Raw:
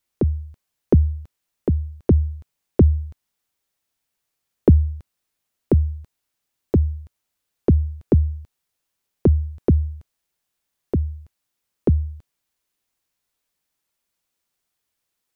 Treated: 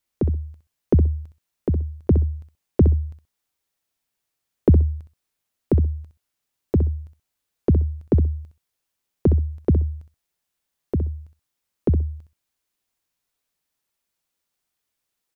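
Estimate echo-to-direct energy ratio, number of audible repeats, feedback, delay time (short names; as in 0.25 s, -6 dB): -9.5 dB, 2, 17%, 64 ms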